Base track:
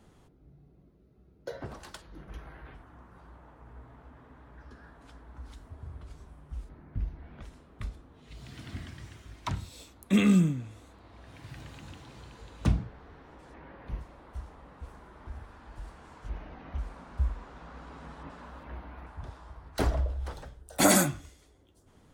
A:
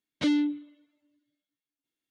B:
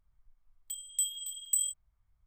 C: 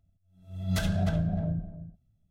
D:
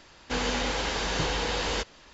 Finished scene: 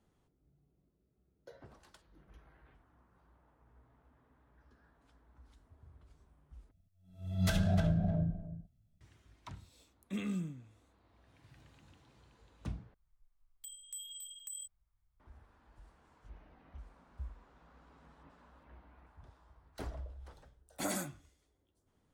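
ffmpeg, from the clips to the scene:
-filter_complex "[0:a]volume=0.168[s0];[2:a]acompressor=threshold=0.0178:ratio=4:attack=0.52:release=126:knee=1:detection=peak[s1];[s0]asplit=3[s2][s3][s4];[s2]atrim=end=6.714[s5];[3:a]atrim=end=2.3,asetpts=PTS-STARTPTS,volume=0.75[s6];[s3]atrim=start=9.006:end=12.944[s7];[s1]atrim=end=2.26,asetpts=PTS-STARTPTS,volume=0.501[s8];[s4]atrim=start=15.196[s9];[s5][s6]acrossfade=d=0.004:c1=hsin:c2=hsin[s10];[s10][s7]acrossfade=d=0.004:c1=hsin:c2=hsin[s11];[s11][s8]acrossfade=d=0.004:c1=hsin:c2=hsin[s12];[s12][s9]acrossfade=d=0.004:c1=hsin:c2=hsin"

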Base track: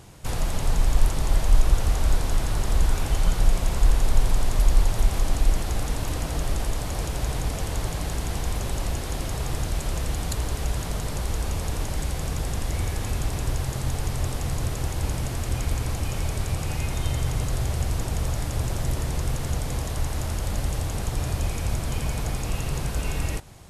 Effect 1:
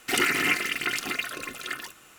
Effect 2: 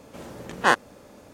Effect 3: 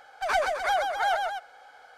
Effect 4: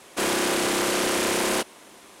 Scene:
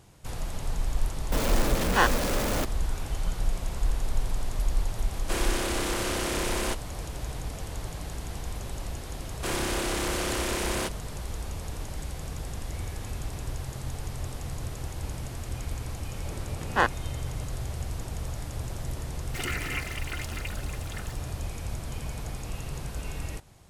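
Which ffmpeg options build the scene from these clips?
-filter_complex "[2:a]asplit=2[s0][s1];[4:a]asplit=2[s2][s3];[0:a]volume=0.398[s4];[s0]aeval=exprs='val(0)+0.5*0.126*sgn(val(0))':c=same[s5];[s1]aemphasis=mode=reproduction:type=50fm[s6];[s5]atrim=end=1.33,asetpts=PTS-STARTPTS,volume=0.531,afade=t=in:d=0.004:c=hsin,afade=t=out:st=1.326:d=0.004:c=hsin,adelay=1320[s7];[s2]atrim=end=2.2,asetpts=PTS-STARTPTS,volume=0.473,afade=t=in:d=0.004:c=hsin,afade=t=out:st=2.196:d=0.004:c=hsin,adelay=5120[s8];[s3]atrim=end=2.2,asetpts=PTS-STARTPTS,volume=0.473,afade=t=in:d=0.004:c=hsin,afade=t=out:st=2.196:d=0.004:c=hsin,adelay=9260[s9];[s6]atrim=end=1.33,asetpts=PTS-STARTPTS,volume=0.631,afade=t=in:d=0.004:c=hsin,afade=t=out:st=1.326:d=0.004:c=hsin,adelay=16120[s10];[1:a]atrim=end=2.18,asetpts=PTS-STARTPTS,volume=0.316,afade=t=in:d=0.004:c=hsin,afade=t=out:st=2.176:d=0.004:c=hsin,adelay=19260[s11];[s4][s7][s8][s9][s10][s11]amix=inputs=6:normalize=0"

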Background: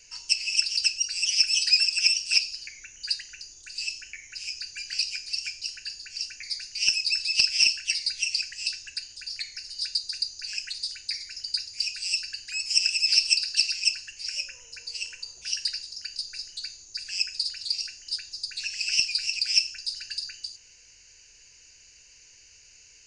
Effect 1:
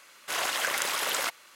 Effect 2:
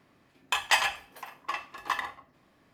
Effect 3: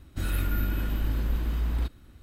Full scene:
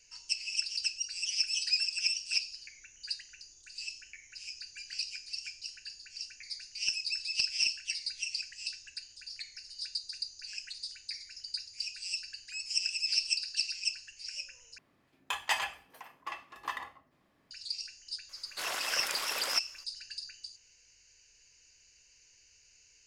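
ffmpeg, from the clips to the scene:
-filter_complex "[0:a]volume=0.355,asplit=2[s0][s1];[s0]atrim=end=14.784[s2];[2:a]atrim=end=2.73,asetpts=PTS-STARTPTS,volume=0.447[s3];[s1]atrim=start=17.506[s4];[1:a]atrim=end=1.55,asetpts=PTS-STARTPTS,volume=0.447,afade=t=in:d=0.004:c=hsin,afade=t=out:st=1.546:d=0.004:c=hsin,adelay=18290[s5];[s2][s3]acrossfade=d=0.004:c1=hsin:c2=hsin[s6];[s6][s4]acrossfade=d=0.004:c1=hsin:c2=hsin[s7];[s7][s5]amix=inputs=2:normalize=0"

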